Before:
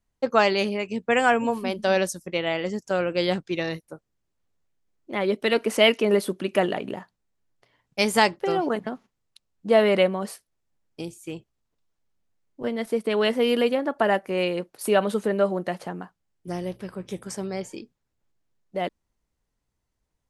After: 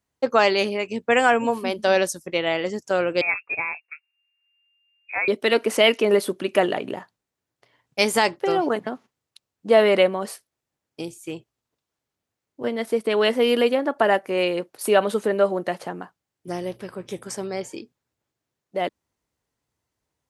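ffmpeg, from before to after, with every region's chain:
-filter_complex "[0:a]asettb=1/sr,asplit=3[a][b][c];[a]atrim=end=3.214[d];[b]atrim=start=3.21:end=5.28,asetpts=PTS-STARTPTS,afade=t=in:d=0.004:c=qsin,afade=t=out:st=2.066:d=0.004:c=qsin,equalizer=f=140:t=o:w=2:g=-9.5,adynamicsmooth=sensitivity=6:basefreq=1.7k,lowpass=f=2.4k:t=q:w=0.5098,lowpass=f=2.4k:t=q:w=0.6013,lowpass=f=2.4k:t=q:w=0.9,lowpass=f=2.4k:t=q:w=2.563,afreqshift=-2800[e];[c]atrim=start=5.276[f];[d][e]acrossfade=d=0.004:c1=hsin:c2=qsin[g];[g][f]acrossfade=d=0.004:c1=qsin:c2=hsin,highpass=99,equalizer=f=190:t=o:w=0.51:g=-6,alimiter=level_in=7dB:limit=-1dB:release=50:level=0:latency=1,volume=-4dB"

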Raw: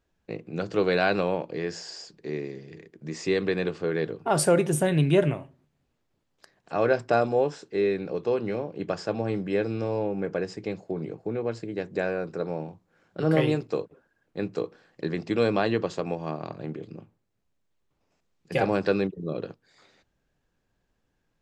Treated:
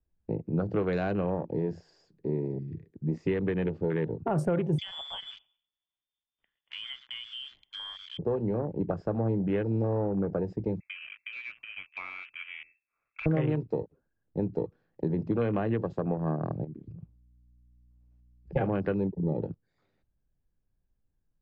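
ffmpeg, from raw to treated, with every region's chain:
-filter_complex "[0:a]asettb=1/sr,asplit=3[a][b][c];[a]atrim=end=4.784[d];[b]atrim=start=4.78:end=8.19,asetpts=PTS-STARTPTS,afade=t=in:d=0.004:c=qsin,afade=t=out:st=3.406:d=0.004:c=qsin,lowpass=f=3.1k:t=q:w=0.5098,lowpass=f=3.1k:t=q:w=0.6013,lowpass=f=3.1k:t=q:w=0.9,lowpass=f=3.1k:t=q:w=2.563,afreqshift=-3600,aecho=1:1:112|224:0.112|0.0247,atrim=end_sample=150381[e];[c]atrim=start=8.186[f];[d][e]acrossfade=d=0.004:c1=hsin:c2=qsin[g];[g][f]acrossfade=d=0.004:c1=qsin:c2=hsin,asettb=1/sr,asplit=3[h][i][j];[h]atrim=end=10.804[k];[i]atrim=start=10.8:end=13.26,asetpts=PTS-STARTPTS,afade=t=in:d=0.004:c=qsin,afade=t=out:st=2.456:d=0.004:c=qsin,highpass=f=110:w=0.5412,highpass=f=110:w=1.3066,lowpass=f=2.4k:t=q:w=0.5098,lowpass=f=2.4k:t=q:w=0.6013,lowpass=f=2.4k:t=q:w=0.9,lowpass=f=2.4k:t=q:w=2.563,afreqshift=-2800[l];[j]atrim=start=13.256[m];[k][l]acrossfade=d=0.004:c1=hsin:c2=qsin[n];[n][m]acrossfade=d=0.004:c1=qsin:c2=hsin,asettb=1/sr,asplit=3[o][p][q];[o]atrim=end=16.644[r];[p]atrim=start=16.64:end=18.56,asetpts=PTS-STARTPTS,afade=t=in:d=0.004:c=qsin,afade=t=out:st=1.916:d=0.004:c=qsin,aeval=exprs='val(0)+0.00126*(sin(2*PI*60*n/s)+sin(2*PI*2*60*n/s)/2+sin(2*PI*3*60*n/s)/3+sin(2*PI*4*60*n/s)/4+sin(2*PI*5*60*n/s)/5)':c=same,acompressor=threshold=-42dB:ratio=16:attack=3.2:release=140:knee=1:detection=peak[s];[q]atrim=start=18.556[t];[r][s]acrossfade=d=0.004:c1=hsin:c2=qsin[u];[u][t]acrossfade=d=0.004:c1=qsin:c2=hsin,afwtdn=0.02,acrossover=split=110|740[v][w][x];[v]acompressor=threshold=-54dB:ratio=4[y];[w]acompressor=threshold=-33dB:ratio=4[z];[x]acompressor=threshold=-36dB:ratio=4[aa];[y][z][aa]amix=inputs=3:normalize=0,aemphasis=mode=reproduction:type=riaa"

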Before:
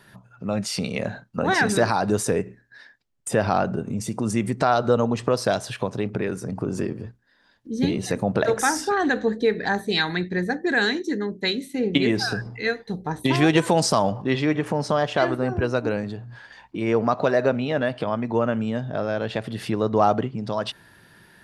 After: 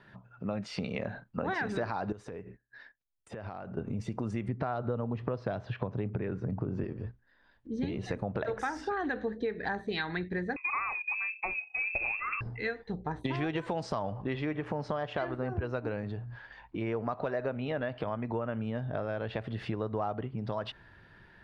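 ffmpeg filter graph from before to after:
-filter_complex "[0:a]asettb=1/sr,asplit=3[a][b][c];[a]atrim=end=2.124[d];[b]atrim=start=2.12:end=3.77,asetpts=PTS-STARTPTS,afade=t=in:d=0.004:c=qsin,afade=t=out:st=1.646:d=0.004:c=qsin,agate=range=-16dB:threshold=-51dB:ratio=16:release=100:detection=peak,acompressor=threshold=-33dB:ratio=8:attack=3.2:release=140:knee=1:detection=peak[e];[c]atrim=start=3.766[f];[d][e]acrossfade=d=0.004:c1=hsin:c2=qsin[g];[g][f]acrossfade=d=0.004:c1=qsin:c2=hsin,asettb=1/sr,asplit=3[h][i][j];[h]atrim=end=4.484[k];[i]atrim=start=4.48:end=6.84,asetpts=PTS-STARTPTS,afade=t=in:d=0.004:c=qsin,afade=t=out:st=2.356:d=0.004:c=qsin,highpass=120,lowpass=6.2k,aemphasis=mode=reproduction:type=bsi[l];[j]atrim=start=6.836[m];[k][l]acrossfade=d=0.004:c1=hsin:c2=qsin[n];[n][m]acrossfade=d=0.004:c1=qsin:c2=hsin,asettb=1/sr,asplit=3[o][p][q];[o]atrim=end=10.564[r];[p]atrim=start=10.56:end=12.41,asetpts=PTS-STARTPTS,afade=t=in:d=0.004:c=qsin,afade=t=out:st=1.846:d=0.004:c=qsin,adynamicsmooth=sensitivity=4.5:basefreq=1.1k,lowpass=f=2.4k:t=q:w=0.5098,lowpass=f=2.4k:t=q:w=0.6013,lowpass=f=2.4k:t=q:w=0.9,lowpass=f=2.4k:t=q:w=2.563,afreqshift=-2800[s];[q]atrim=start=12.406[t];[r][s]acrossfade=d=0.004:c1=hsin:c2=qsin[u];[u][t]acrossfade=d=0.004:c1=qsin:c2=hsin,lowpass=2.8k,asubboost=boost=3.5:cutoff=86,acompressor=threshold=-26dB:ratio=5,volume=-4dB"

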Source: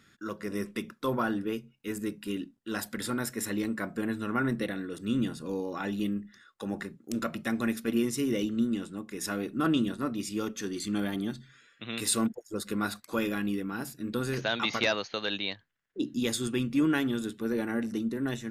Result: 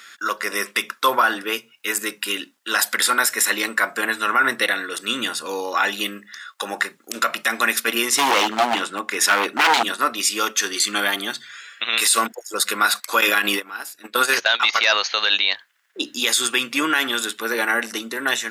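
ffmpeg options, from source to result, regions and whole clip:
-filter_complex "[0:a]asettb=1/sr,asplit=3[a][b][c];[a]atrim=end=8.124[d];[b]atrim=start=8.12:end=9.83,asetpts=PTS-STARTPTS,afade=t=in:d=0.004:c=qsin,afade=t=out:st=1.706:d=0.004:c=qsin,highshelf=f=4.4k:g=-10,aeval=exprs='0.0422*(abs(mod(val(0)/0.0422+3,4)-2)-1)':c=same,acontrast=33[e];[c]atrim=start=9.826[f];[d][e]acrossfade=d=0.004:c1=hsin:c2=qsin[g];[g][f]acrossfade=d=0.004:c1=qsin:c2=hsin,asettb=1/sr,asplit=3[h][i][j];[h]atrim=end=13.214[k];[i]atrim=start=13.21:end=14.8,asetpts=PTS-STARTPTS,afade=t=in:d=0.004:c=qsin,afade=t=out:st=1.586:d=0.004:c=qsin,agate=range=-19dB:threshold=-32dB:ratio=16:release=100:detection=peak,lowshelf=f=99:g=-11.5,acontrast=75[l];[j]atrim=start=14.796[m];[k][l]acrossfade=d=0.004:c1=hsin:c2=qsin[n];[n][m]acrossfade=d=0.004:c1=qsin:c2=hsin,highpass=1k,alimiter=level_in=26dB:limit=-1dB:release=50:level=0:latency=1,volume=-5.5dB"

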